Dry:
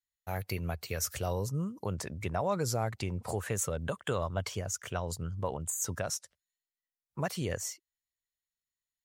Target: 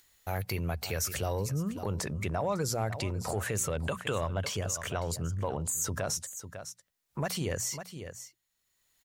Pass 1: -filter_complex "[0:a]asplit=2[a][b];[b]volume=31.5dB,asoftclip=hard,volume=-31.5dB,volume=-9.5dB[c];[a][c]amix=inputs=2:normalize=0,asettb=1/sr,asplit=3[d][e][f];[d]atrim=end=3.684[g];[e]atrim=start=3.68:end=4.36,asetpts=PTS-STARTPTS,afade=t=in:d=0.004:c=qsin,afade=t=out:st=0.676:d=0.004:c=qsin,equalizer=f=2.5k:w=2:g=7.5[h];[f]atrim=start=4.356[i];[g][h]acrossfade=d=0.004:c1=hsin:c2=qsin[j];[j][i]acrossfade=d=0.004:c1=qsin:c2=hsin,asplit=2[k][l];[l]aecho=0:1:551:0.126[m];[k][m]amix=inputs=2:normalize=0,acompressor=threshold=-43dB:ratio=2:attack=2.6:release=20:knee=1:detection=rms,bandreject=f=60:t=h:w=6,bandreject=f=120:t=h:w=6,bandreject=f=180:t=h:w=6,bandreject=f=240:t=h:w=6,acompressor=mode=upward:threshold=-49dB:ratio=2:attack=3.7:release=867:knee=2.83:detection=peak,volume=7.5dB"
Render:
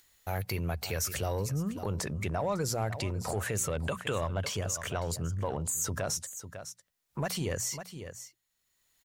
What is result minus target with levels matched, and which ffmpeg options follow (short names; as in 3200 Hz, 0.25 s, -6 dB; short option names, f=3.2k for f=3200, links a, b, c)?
overloaded stage: distortion +13 dB
-filter_complex "[0:a]asplit=2[a][b];[b]volume=24dB,asoftclip=hard,volume=-24dB,volume=-9.5dB[c];[a][c]amix=inputs=2:normalize=0,asettb=1/sr,asplit=3[d][e][f];[d]atrim=end=3.684[g];[e]atrim=start=3.68:end=4.36,asetpts=PTS-STARTPTS,afade=t=in:d=0.004:c=qsin,afade=t=out:st=0.676:d=0.004:c=qsin,equalizer=f=2.5k:w=2:g=7.5[h];[f]atrim=start=4.356[i];[g][h]acrossfade=d=0.004:c1=hsin:c2=qsin[j];[j][i]acrossfade=d=0.004:c1=qsin:c2=hsin,asplit=2[k][l];[l]aecho=0:1:551:0.126[m];[k][m]amix=inputs=2:normalize=0,acompressor=threshold=-43dB:ratio=2:attack=2.6:release=20:knee=1:detection=rms,bandreject=f=60:t=h:w=6,bandreject=f=120:t=h:w=6,bandreject=f=180:t=h:w=6,bandreject=f=240:t=h:w=6,acompressor=mode=upward:threshold=-49dB:ratio=2:attack=3.7:release=867:knee=2.83:detection=peak,volume=7.5dB"